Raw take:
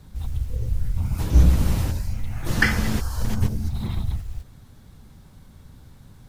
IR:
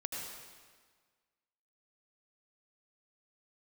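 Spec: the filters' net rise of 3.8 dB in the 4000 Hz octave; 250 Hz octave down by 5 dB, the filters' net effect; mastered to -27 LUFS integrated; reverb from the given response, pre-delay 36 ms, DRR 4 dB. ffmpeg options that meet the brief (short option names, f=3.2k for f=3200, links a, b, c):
-filter_complex "[0:a]equalizer=f=250:t=o:g=-7.5,equalizer=f=4k:t=o:g=5,asplit=2[a][b];[1:a]atrim=start_sample=2205,adelay=36[c];[b][c]afir=irnorm=-1:irlink=0,volume=-5.5dB[d];[a][d]amix=inputs=2:normalize=0,volume=-3dB"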